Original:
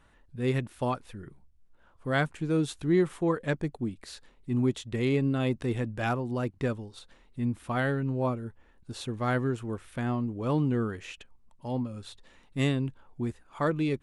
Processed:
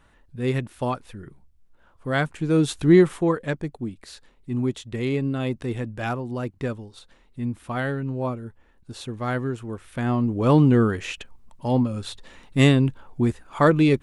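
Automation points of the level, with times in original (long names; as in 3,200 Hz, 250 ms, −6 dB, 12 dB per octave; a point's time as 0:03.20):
0:02.23 +3.5 dB
0:02.90 +10.5 dB
0:03.56 +1.5 dB
0:09.75 +1.5 dB
0:10.39 +10.5 dB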